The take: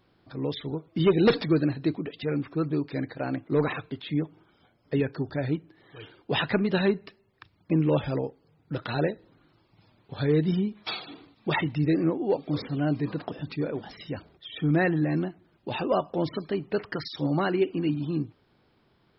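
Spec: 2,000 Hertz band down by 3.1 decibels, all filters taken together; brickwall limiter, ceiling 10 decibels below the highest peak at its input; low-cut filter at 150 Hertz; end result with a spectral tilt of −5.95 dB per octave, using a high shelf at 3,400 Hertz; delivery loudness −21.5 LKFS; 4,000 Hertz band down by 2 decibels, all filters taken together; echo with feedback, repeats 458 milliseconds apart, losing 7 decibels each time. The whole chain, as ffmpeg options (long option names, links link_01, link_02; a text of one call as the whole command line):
ffmpeg -i in.wav -af "highpass=150,equalizer=frequency=2000:width_type=o:gain=-4.5,highshelf=frequency=3400:gain=5.5,equalizer=frequency=4000:width_type=o:gain=-4.5,alimiter=limit=-20.5dB:level=0:latency=1,aecho=1:1:458|916|1374|1832|2290:0.447|0.201|0.0905|0.0407|0.0183,volume=10dB" out.wav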